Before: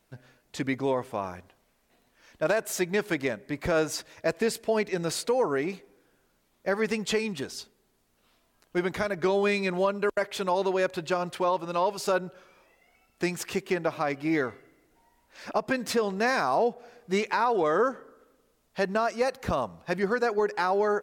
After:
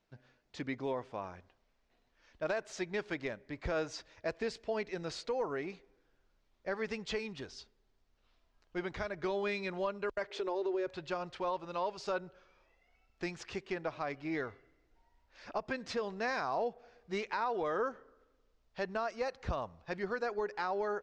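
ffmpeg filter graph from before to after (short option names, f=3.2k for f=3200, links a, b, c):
-filter_complex "[0:a]asettb=1/sr,asplit=3[a][b][c];[a]atrim=end=10.304[d];[b]atrim=start=10.3:end=10.87,asetpts=PTS-STARTPTS,afade=t=in:d=0.004:c=qsin,afade=t=out:st=0.566:d=0.004:c=qsin,highpass=f=370:t=q:w=4.6,acompressor=threshold=-22dB:ratio=4:attack=3.2:release=140:knee=1:detection=peak[e];[c]atrim=start=10.866[f];[d][e]acrossfade=d=0.004:c1=hsin:c2=qsin[g];[g][f]acrossfade=d=0.004:c1=qsin:c2=hsin,lowpass=f=5.9k:w=0.5412,lowpass=f=5.9k:w=1.3066,asubboost=boost=4.5:cutoff=79,volume=-9dB"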